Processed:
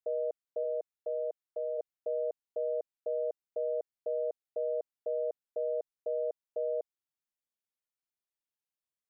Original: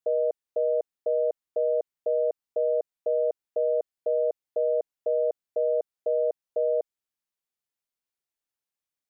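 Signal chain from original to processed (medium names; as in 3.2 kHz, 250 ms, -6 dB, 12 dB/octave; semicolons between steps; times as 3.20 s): 0.63–1.77 s: high-pass 350 Hz -> 500 Hz 12 dB/octave; trim -8 dB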